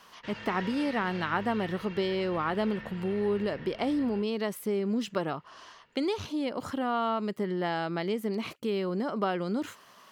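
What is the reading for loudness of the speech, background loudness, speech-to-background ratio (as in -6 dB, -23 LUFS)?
-31.0 LUFS, -43.5 LUFS, 12.5 dB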